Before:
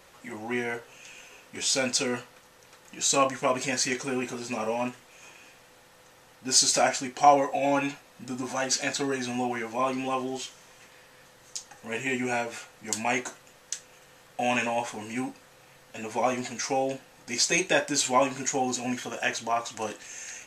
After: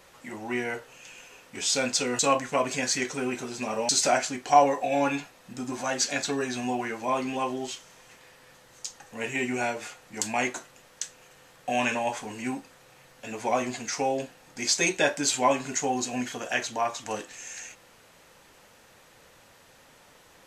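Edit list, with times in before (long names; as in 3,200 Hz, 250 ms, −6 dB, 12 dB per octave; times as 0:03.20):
0:02.19–0:03.09: remove
0:04.79–0:06.60: remove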